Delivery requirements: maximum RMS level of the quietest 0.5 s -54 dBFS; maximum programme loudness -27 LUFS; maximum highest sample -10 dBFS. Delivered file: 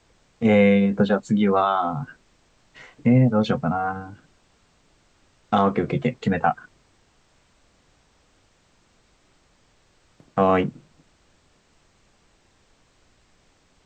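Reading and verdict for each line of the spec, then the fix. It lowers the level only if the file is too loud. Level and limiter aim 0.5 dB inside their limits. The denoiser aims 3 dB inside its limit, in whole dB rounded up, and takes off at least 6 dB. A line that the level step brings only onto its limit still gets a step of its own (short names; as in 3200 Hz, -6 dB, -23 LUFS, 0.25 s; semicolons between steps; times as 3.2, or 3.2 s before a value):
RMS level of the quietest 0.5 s -61 dBFS: OK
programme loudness -21.0 LUFS: fail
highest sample -5.0 dBFS: fail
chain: gain -6.5 dB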